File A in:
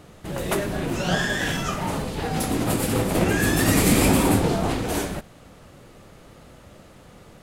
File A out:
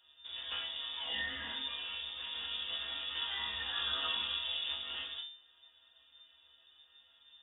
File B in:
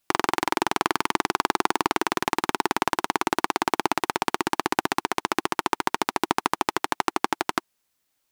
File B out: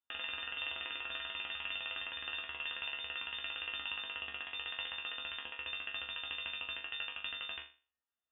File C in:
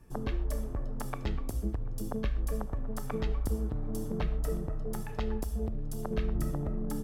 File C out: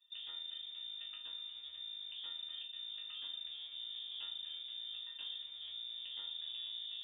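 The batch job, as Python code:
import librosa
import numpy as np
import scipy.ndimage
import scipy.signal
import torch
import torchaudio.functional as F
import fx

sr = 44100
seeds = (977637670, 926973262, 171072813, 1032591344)

p1 = fx.fixed_phaser(x, sr, hz=1300.0, stages=6)
p2 = fx.schmitt(p1, sr, flips_db=-33.5)
p3 = p1 + (p2 * 10.0 ** (-6.5 / 20.0))
p4 = fx.resonator_bank(p3, sr, root=50, chord='sus4', decay_s=0.35)
p5 = fx.freq_invert(p4, sr, carrier_hz=3600)
y = p5 * 10.0 ** (1.0 / 20.0)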